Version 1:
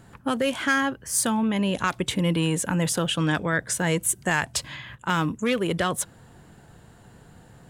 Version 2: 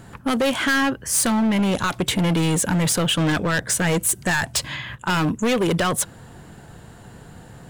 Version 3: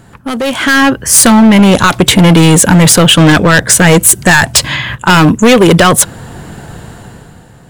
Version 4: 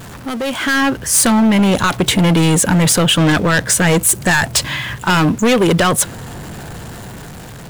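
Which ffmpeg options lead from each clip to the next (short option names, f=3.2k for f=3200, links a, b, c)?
-af "volume=24dB,asoftclip=hard,volume=-24dB,volume=7.5dB"
-af "dynaudnorm=f=110:g=13:m=12dB,volume=3.5dB"
-af "aeval=exprs='val(0)+0.5*0.0891*sgn(val(0))':c=same,volume=-8dB"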